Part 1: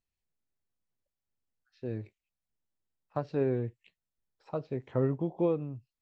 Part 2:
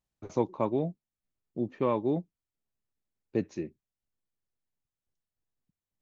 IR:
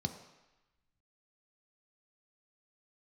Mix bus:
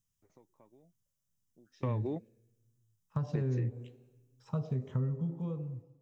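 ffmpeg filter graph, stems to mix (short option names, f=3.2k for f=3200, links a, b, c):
-filter_complex "[0:a]bass=f=250:g=4,treble=f=4k:g=13,volume=-1.5dB,afade=t=out:st=4.72:d=0.75:silence=0.281838,asplit=3[a][b][c];[b]volume=-6.5dB[d];[1:a]equalizer=f=1.9k:t=o:w=0.25:g=11,acompressor=threshold=-32dB:ratio=6,volume=2.5dB[e];[c]apad=whole_len=265364[f];[e][f]sidechaingate=range=-29dB:threshold=-55dB:ratio=16:detection=peak[g];[2:a]atrim=start_sample=2205[h];[d][h]afir=irnorm=-1:irlink=0[i];[a][g][i]amix=inputs=3:normalize=0,acompressor=threshold=-30dB:ratio=4"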